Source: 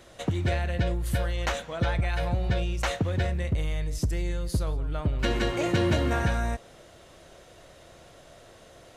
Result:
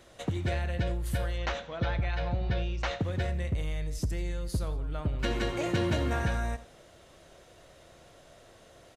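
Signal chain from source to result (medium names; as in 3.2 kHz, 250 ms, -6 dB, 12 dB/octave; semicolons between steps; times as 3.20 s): 1.38–3.00 s: low-pass 5.5 kHz 24 dB/octave; delay 84 ms -16 dB; trim -4 dB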